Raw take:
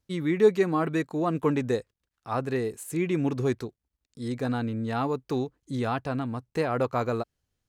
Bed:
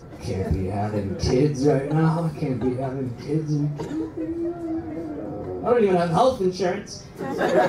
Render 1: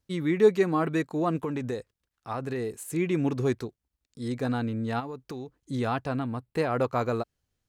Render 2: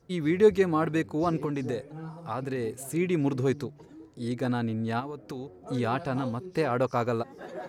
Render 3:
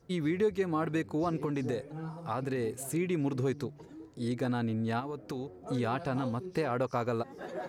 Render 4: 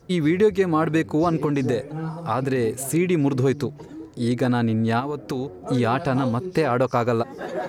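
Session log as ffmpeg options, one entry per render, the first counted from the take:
-filter_complex "[0:a]asettb=1/sr,asplit=3[a][b][c];[a]atrim=end=1.364[d];[b]atrim=start=1.36:end=2.78,asetpts=PTS-STARTPTS,afade=t=in:d=0.004:c=qsin,afade=t=out:st=1.416:d=0.004:c=qsin,acompressor=threshold=-27dB:ratio=6:attack=3.2:release=140:knee=1:detection=peak[e];[c]atrim=start=2.776[f];[d][e]acrossfade=d=0.004:c1=hsin:c2=qsin[g];[g][f]acrossfade=d=0.004:c1=qsin:c2=hsin,asplit=3[h][i][j];[h]afade=t=out:st=4.99:d=0.02[k];[i]acompressor=threshold=-34dB:ratio=6:attack=3.2:release=140:knee=1:detection=peak,afade=t=in:st=4.99:d=0.02,afade=t=out:st=5.59:d=0.02[l];[j]afade=t=in:st=5.59:d=0.02[m];[k][l][m]amix=inputs=3:normalize=0,asettb=1/sr,asplit=3[n][o][p];[n]atrim=end=6.184[q];[o]atrim=start=6.18:end=6.58,asetpts=PTS-STARTPTS,afade=t=in:d=0.004:c=qsin,afade=t=out:st=0.396:d=0.004:c=qsin,equalizer=f=6.1k:w=4.2:g=-13.5[r];[p]atrim=start=6.576[s];[q][r]acrossfade=d=0.004:c1=hsin:c2=qsin[t];[t][s]acrossfade=d=0.004:c1=qsin:c2=hsin"
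-filter_complex "[1:a]volume=-20.5dB[a];[0:a][a]amix=inputs=2:normalize=0"
-af "acompressor=threshold=-29dB:ratio=2.5"
-af "volume=10.5dB"

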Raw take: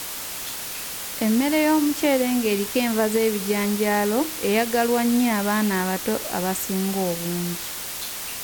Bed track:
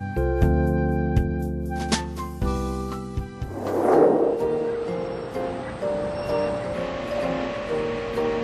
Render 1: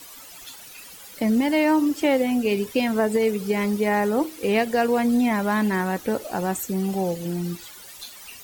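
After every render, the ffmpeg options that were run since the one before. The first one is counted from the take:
-af "afftdn=nr=15:nf=-32"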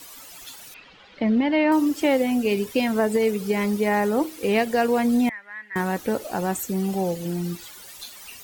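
-filter_complex "[0:a]asettb=1/sr,asplit=3[a][b][c];[a]atrim=end=0.744[d];[b]atrim=start=0.74:end=1.72,asetpts=PTS-STARTPTS,afade=t=in:d=0.004:c=qsin,afade=t=out:st=0.976:d=0.004:c=qsin,lowpass=f=3.7k:w=0.5412,lowpass=f=3.7k:w=1.3066[e];[c]atrim=start=1.716[f];[d][e]acrossfade=d=0.004:c1=hsin:c2=qsin[g];[g][f]acrossfade=d=0.004:c1=qsin:c2=hsin,asettb=1/sr,asplit=3[h][i][j];[h]atrim=end=5.294[k];[i]atrim=start=5.29:end=5.76,asetpts=PTS-STARTPTS,afade=t=in:d=0.004:c=qsin,afade=t=out:st=0.466:d=0.004:c=qsin,bandpass=f=1.9k:t=q:w=9.6[l];[j]atrim=start=5.756[m];[k][l]acrossfade=d=0.004:c1=hsin:c2=qsin[n];[n][m]acrossfade=d=0.004:c1=qsin:c2=hsin"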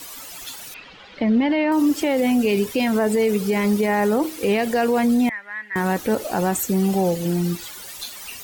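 -af "alimiter=limit=-17.5dB:level=0:latency=1:release=35,acontrast=47"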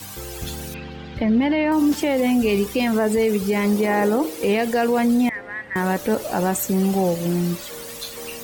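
-filter_complex "[1:a]volume=-13dB[a];[0:a][a]amix=inputs=2:normalize=0"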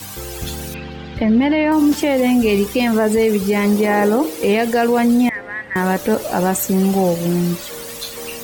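-af "volume=4dB"

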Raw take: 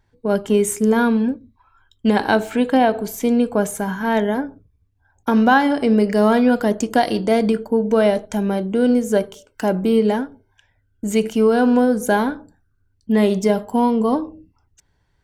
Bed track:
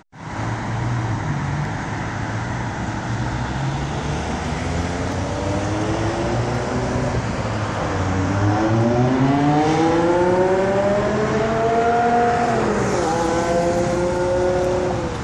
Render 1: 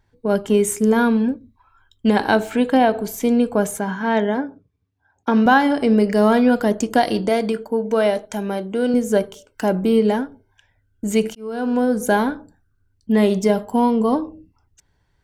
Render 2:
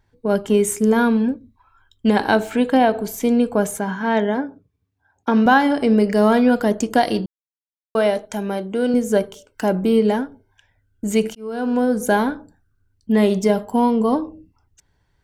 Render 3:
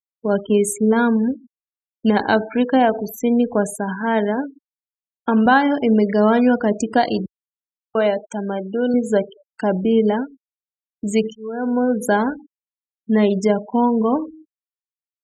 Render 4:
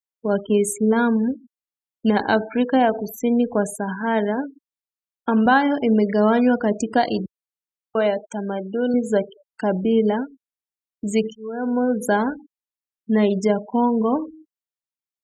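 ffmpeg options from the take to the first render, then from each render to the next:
-filter_complex "[0:a]asettb=1/sr,asplit=3[a][b][c];[a]atrim=end=3.794[d];[b]atrim=start=3.79:end=5.46,asetpts=PTS-STARTPTS,afade=t=in:d=0.004:c=qsin,afade=t=out:st=1.666:d=0.004:c=qsin,highpass=140,lowpass=5.6k[e];[c]atrim=start=5.456[f];[d][e]acrossfade=d=0.004:c1=hsin:c2=qsin[g];[g][f]acrossfade=d=0.004:c1=qsin:c2=hsin,asettb=1/sr,asplit=3[h][i][j];[h]atrim=end=7.294[k];[i]atrim=start=7.29:end=8.94,asetpts=PTS-STARTPTS,afade=t=in:d=0.004:c=qsin,afade=t=out:st=1.646:d=0.004:c=qsin,lowshelf=f=250:g=-9.5[l];[j]atrim=start=8.936[m];[k][l]acrossfade=d=0.004:c1=hsin:c2=qsin[n];[n][m]acrossfade=d=0.004:c1=qsin:c2=hsin,asplit=2[o][p];[o]atrim=end=11.35,asetpts=PTS-STARTPTS,afade=t=out:st=11.346:d=0.004:c=hsin[q];[p]atrim=start=11.35,asetpts=PTS-STARTPTS,afade=t=in:d=0.66[r];[q][r]concat=n=2:v=0:a=1"
-filter_complex "[0:a]asplit=3[a][b][c];[a]atrim=end=7.26,asetpts=PTS-STARTPTS,afade=t=out:st=7.256:d=0.004:c=hsin[d];[b]atrim=start=7.26:end=7.95,asetpts=PTS-STARTPTS,volume=0[e];[c]atrim=start=7.95,asetpts=PTS-STARTPTS,afade=t=in:d=0.004:c=hsin[f];[d][e][f]concat=n=3:v=0:a=1"
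-af "afftfilt=real='re*gte(hypot(re,im),0.0398)':imag='im*gte(hypot(re,im),0.0398)':win_size=1024:overlap=0.75,highpass=42"
-af "volume=-2dB"

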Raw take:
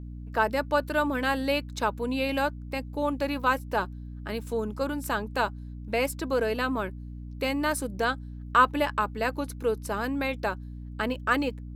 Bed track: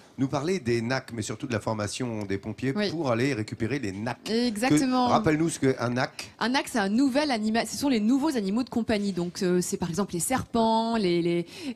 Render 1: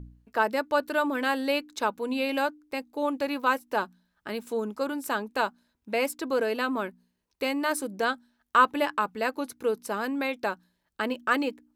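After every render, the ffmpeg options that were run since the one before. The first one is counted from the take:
-af "bandreject=f=60:t=h:w=4,bandreject=f=120:t=h:w=4,bandreject=f=180:t=h:w=4,bandreject=f=240:t=h:w=4,bandreject=f=300:t=h:w=4"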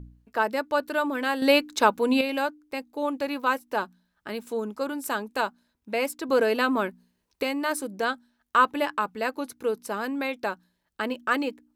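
-filter_complex "[0:a]asettb=1/sr,asplit=3[a][b][c];[a]atrim=end=4.994[d];[b]atrim=start=4.99:end=5.41,asetpts=PTS-STARTPTS,afade=t=in:d=0.004:c=qsin,afade=t=out:st=0.416:d=0.004:c=qsin,equalizer=f=9.9k:w=0.62:g=4[e];[c]atrim=start=5.406[f];[d][e]acrossfade=d=0.004:c1=hsin:c2=qsin[g];[g][f]acrossfade=d=0.004:c1=qsin:c2=hsin,asplit=5[h][i][j][k][l];[h]atrim=end=1.422[m];[i]atrim=start=1.418:end=2.212,asetpts=PTS-STARTPTS,volume=7.5dB[n];[j]atrim=start=2.208:end=6.292[o];[k]atrim=start=6.288:end=7.432,asetpts=PTS-STARTPTS,volume=4.5dB[p];[l]atrim=start=7.428[q];[m][n]acrossfade=d=0.004:c1=hsin:c2=hsin[r];[r][o]acrossfade=d=0.004:c1=hsin:c2=hsin[s];[s][p]acrossfade=d=0.004:c1=hsin:c2=hsin[t];[t][q]acrossfade=d=0.004:c1=hsin:c2=hsin"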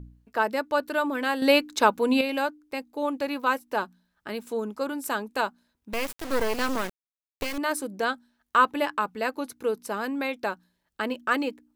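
-filter_complex "[0:a]asettb=1/sr,asplit=3[a][b][c];[a]atrim=end=5.934[d];[b]atrim=start=5.93:end=7.58,asetpts=PTS-STARTPTS,afade=t=in:d=0.004:c=qsin,afade=t=out:st=1.646:d=0.004:c=qsin,acrusher=bits=3:dc=4:mix=0:aa=0.000001[e];[c]atrim=start=7.576[f];[d][e]acrossfade=d=0.004:c1=hsin:c2=qsin[g];[g][f]acrossfade=d=0.004:c1=qsin:c2=hsin"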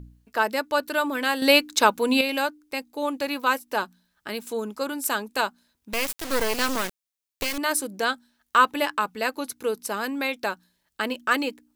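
-af "highshelf=f=2.3k:g=9"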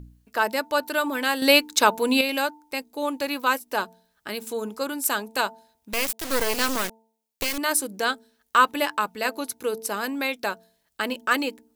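-af "highshelf=f=5.9k:g=4,bandreject=f=223.4:t=h:w=4,bandreject=f=446.8:t=h:w=4,bandreject=f=670.2:t=h:w=4,bandreject=f=893.6:t=h:w=4"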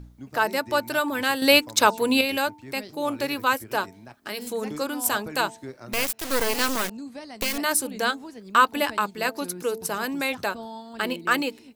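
-filter_complex "[1:a]volume=-15dB[a];[0:a][a]amix=inputs=2:normalize=0"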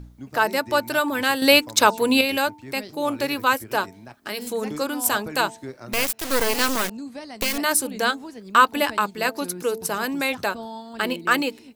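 -af "volume=2.5dB,alimiter=limit=-3dB:level=0:latency=1"

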